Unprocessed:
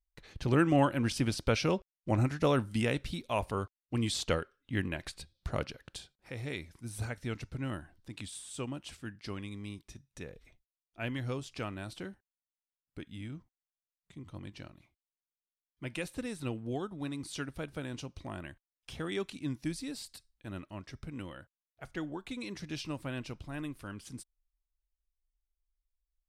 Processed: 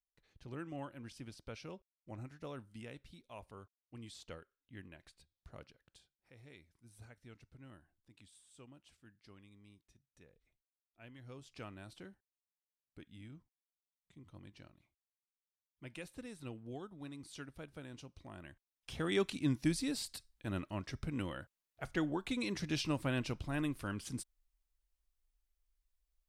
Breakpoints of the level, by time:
0:11.16 −19 dB
0:11.56 −10 dB
0:18.32 −10 dB
0:19.20 +3 dB

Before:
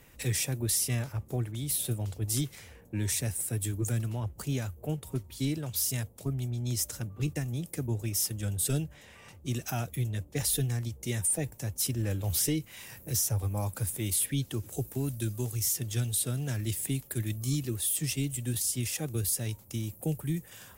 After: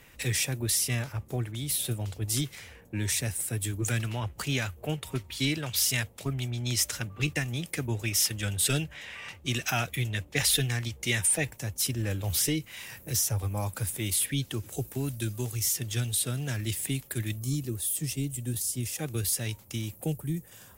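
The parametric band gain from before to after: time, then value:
parametric band 2,400 Hz 2.5 octaves
+6 dB
from 0:03.84 +14 dB
from 0:11.56 +6 dB
from 0:17.39 −4 dB
from 0:18.99 +7 dB
from 0:20.12 −4 dB

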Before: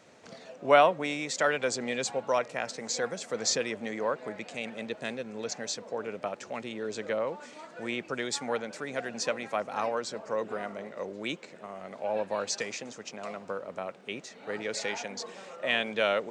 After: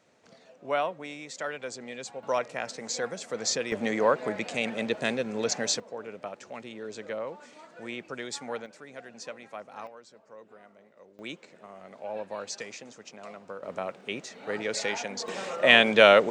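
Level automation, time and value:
−8 dB
from 0:02.23 −0.5 dB
from 0:03.72 +7 dB
from 0:05.80 −4 dB
from 0:08.66 −10 dB
from 0:09.87 −17.5 dB
from 0:11.19 −5 dB
from 0:13.63 +3 dB
from 0:15.28 +10.5 dB

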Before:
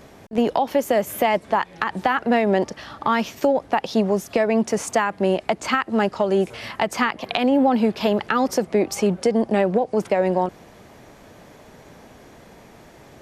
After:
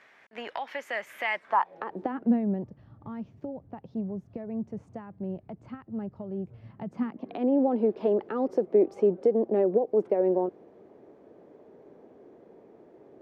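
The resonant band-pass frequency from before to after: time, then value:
resonant band-pass, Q 2.4
0:01.39 1,900 Hz
0:01.72 620 Hz
0:02.69 110 Hz
0:06.59 110 Hz
0:07.53 390 Hz

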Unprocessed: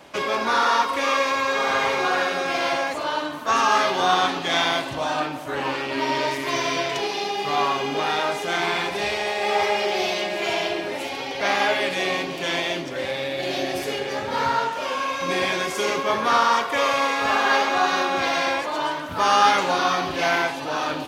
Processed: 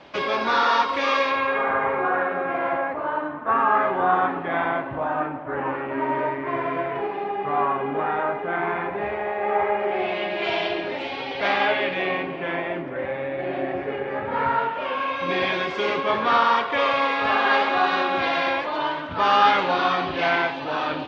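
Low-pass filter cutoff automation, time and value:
low-pass filter 24 dB per octave
0:01.19 4,700 Hz
0:01.76 1,800 Hz
0:09.82 1,800 Hz
0:10.48 3,900 Hz
0:11.48 3,900 Hz
0:12.63 2,000 Hz
0:14.02 2,000 Hz
0:15.40 3,800 Hz

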